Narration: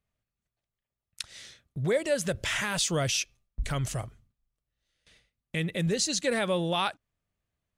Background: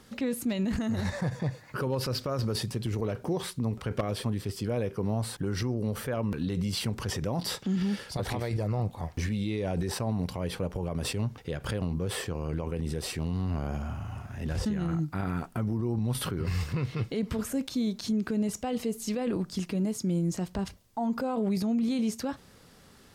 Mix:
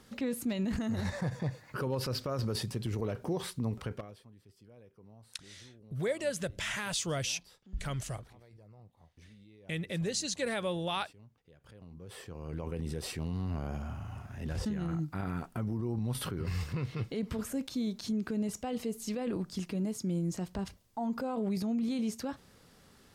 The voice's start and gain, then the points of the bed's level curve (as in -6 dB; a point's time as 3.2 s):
4.15 s, -6.0 dB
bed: 3.85 s -3.5 dB
4.24 s -26.5 dB
11.56 s -26.5 dB
12.66 s -4.5 dB